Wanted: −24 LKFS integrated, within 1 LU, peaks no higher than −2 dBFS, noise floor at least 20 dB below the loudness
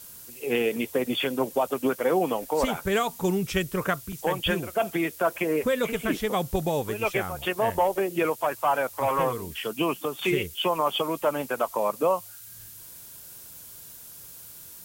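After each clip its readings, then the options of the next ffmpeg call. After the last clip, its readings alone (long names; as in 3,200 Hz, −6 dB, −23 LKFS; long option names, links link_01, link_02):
background noise floor −45 dBFS; target noise floor −47 dBFS; integrated loudness −26.5 LKFS; sample peak −12.5 dBFS; target loudness −24.0 LKFS
→ -af "afftdn=noise_reduction=6:noise_floor=-45"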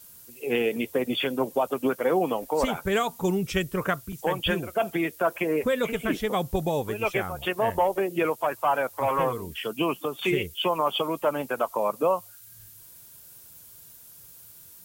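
background noise floor −49 dBFS; integrated loudness −27.0 LKFS; sample peak −12.5 dBFS; target loudness −24.0 LKFS
→ -af "volume=3dB"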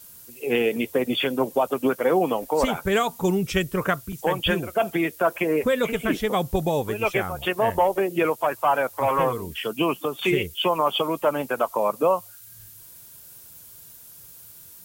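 integrated loudness −24.0 LKFS; sample peak −9.5 dBFS; background noise floor −46 dBFS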